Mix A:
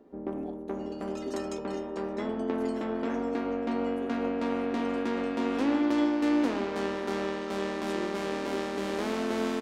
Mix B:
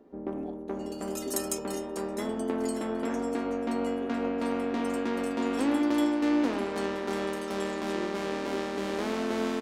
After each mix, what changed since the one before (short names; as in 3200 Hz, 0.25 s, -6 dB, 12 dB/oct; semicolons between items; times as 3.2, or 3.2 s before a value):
second sound: remove air absorption 170 m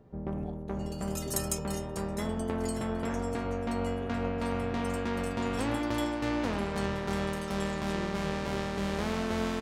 master: add resonant low shelf 190 Hz +13 dB, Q 3